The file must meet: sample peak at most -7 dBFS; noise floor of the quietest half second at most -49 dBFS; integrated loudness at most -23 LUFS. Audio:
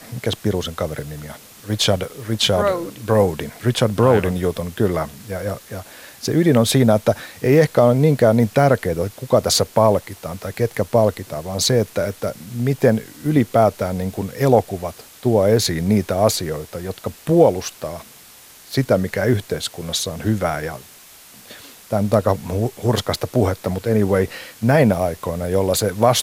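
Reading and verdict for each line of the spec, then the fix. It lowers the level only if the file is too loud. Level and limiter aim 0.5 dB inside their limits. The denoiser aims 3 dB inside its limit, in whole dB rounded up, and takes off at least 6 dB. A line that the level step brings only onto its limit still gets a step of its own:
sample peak -2.0 dBFS: fail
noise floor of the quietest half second -45 dBFS: fail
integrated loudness -19.0 LUFS: fail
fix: gain -4.5 dB; limiter -7.5 dBFS

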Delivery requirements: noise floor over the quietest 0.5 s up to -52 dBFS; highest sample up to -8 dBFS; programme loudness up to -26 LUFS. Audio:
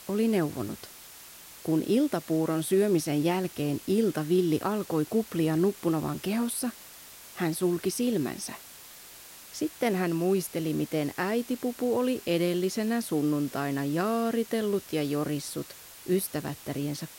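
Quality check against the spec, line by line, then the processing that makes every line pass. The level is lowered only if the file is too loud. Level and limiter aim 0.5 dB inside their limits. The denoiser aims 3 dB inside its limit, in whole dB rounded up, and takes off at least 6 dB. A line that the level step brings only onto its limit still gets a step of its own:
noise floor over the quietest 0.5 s -48 dBFS: fail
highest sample -14.0 dBFS: OK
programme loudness -28.5 LUFS: OK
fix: denoiser 7 dB, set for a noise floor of -48 dBFS

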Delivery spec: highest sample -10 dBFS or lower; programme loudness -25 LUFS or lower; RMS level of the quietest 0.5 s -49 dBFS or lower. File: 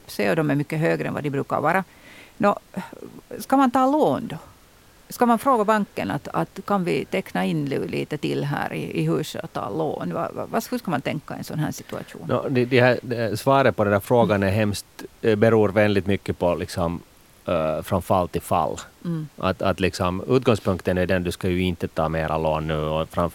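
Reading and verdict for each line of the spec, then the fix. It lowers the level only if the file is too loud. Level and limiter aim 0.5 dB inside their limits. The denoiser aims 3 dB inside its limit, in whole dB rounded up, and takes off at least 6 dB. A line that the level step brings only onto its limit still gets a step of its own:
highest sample -2.0 dBFS: fail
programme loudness -23.0 LUFS: fail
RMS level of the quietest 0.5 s -52 dBFS: OK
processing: gain -2.5 dB; limiter -10.5 dBFS

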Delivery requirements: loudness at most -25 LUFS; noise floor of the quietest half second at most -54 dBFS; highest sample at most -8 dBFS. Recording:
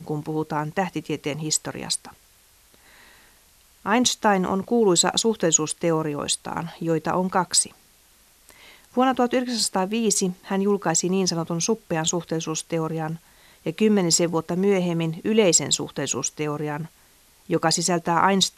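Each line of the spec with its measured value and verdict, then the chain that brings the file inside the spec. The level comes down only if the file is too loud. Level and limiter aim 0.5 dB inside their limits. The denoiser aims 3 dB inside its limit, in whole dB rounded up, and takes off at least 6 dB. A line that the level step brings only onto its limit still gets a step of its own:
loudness -22.5 LUFS: fail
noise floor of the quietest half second -57 dBFS: OK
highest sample -4.5 dBFS: fail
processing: gain -3 dB; limiter -8.5 dBFS

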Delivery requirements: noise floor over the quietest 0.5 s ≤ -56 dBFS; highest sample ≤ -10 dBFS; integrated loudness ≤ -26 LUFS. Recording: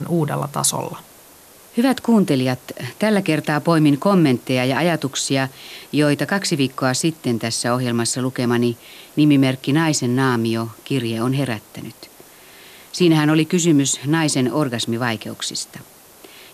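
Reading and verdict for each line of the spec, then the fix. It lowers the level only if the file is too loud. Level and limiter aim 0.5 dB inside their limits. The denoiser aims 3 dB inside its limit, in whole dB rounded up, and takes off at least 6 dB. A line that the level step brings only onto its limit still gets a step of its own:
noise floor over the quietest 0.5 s -46 dBFS: fail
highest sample -5.5 dBFS: fail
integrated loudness -19.0 LUFS: fail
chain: denoiser 6 dB, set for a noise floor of -46 dBFS; gain -7.5 dB

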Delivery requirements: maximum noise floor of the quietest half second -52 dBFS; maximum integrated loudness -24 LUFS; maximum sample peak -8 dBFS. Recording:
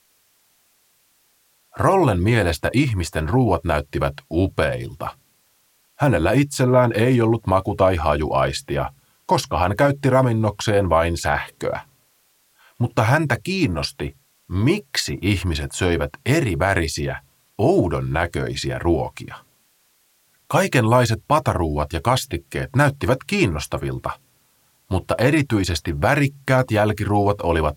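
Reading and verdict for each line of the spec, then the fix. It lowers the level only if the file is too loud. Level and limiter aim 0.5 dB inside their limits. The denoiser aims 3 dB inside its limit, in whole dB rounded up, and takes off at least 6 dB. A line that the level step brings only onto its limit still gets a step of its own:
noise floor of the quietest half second -62 dBFS: OK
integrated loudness -20.5 LUFS: fail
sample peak -5.0 dBFS: fail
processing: gain -4 dB

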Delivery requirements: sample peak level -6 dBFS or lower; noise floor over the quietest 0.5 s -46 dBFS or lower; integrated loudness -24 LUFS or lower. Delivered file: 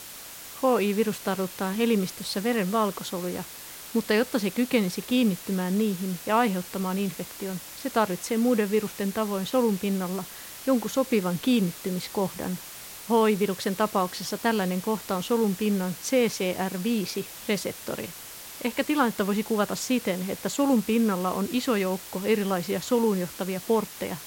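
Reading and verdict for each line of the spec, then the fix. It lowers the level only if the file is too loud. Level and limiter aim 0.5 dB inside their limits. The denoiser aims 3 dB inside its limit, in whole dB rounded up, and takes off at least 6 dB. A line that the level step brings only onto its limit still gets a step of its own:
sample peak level -9.5 dBFS: OK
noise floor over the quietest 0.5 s -42 dBFS: fail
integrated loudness -26.5 LUFS: OK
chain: denoiser 7 dB, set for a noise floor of -42 dBFS

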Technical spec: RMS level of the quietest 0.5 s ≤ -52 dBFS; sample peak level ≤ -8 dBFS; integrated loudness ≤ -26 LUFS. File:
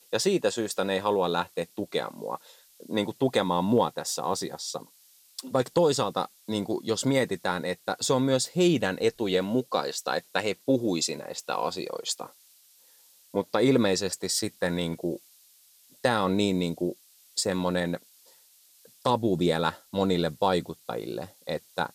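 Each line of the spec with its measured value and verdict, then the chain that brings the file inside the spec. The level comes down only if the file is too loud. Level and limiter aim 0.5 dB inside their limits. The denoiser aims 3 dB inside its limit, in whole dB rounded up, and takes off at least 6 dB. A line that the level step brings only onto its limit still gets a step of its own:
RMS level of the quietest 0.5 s -59 dBFS: OK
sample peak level -10.0 dBFS: OK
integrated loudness -27.5 LUFS: OK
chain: none

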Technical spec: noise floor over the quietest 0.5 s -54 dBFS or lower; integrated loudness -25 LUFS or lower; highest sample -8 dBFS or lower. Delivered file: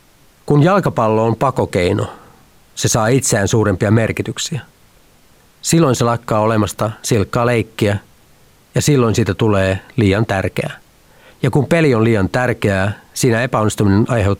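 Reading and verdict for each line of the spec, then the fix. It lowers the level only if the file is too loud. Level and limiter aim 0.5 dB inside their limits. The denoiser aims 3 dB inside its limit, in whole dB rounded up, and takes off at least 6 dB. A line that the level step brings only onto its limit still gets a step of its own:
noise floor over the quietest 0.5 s -49 dBFS: fail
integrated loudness -15.5 LUFS: fail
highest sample -2.5 dBFS: fail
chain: gain -10 dB

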